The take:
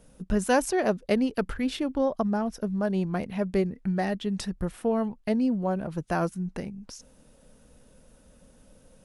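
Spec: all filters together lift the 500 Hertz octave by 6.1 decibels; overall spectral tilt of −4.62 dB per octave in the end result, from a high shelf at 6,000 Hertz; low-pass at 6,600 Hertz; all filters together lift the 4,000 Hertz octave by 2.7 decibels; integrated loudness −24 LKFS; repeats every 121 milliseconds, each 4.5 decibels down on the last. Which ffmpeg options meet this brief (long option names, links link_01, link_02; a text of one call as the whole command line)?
ffmpeg -i in.wav -af "lowpass=6600,equalizer=frequency=500:width_type=o:gain=7.5,equalizer=frequency=4000:width_type=o:gain=6,highshelf=frequency=6000:gain=-5.5,aecho=1:1:121|242|363|484|605|726|847|968|1089:0.596|0.357|0.214|0.129|0.0772|0.0463|0.0278|0.0167|0.01,volume=-1.5dB" out.wav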